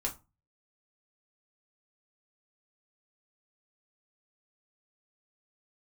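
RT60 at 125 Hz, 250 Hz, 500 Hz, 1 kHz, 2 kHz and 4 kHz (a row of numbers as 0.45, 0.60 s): 0.50, 0.35, 0.25, 0.30, 0.20, 0.20 s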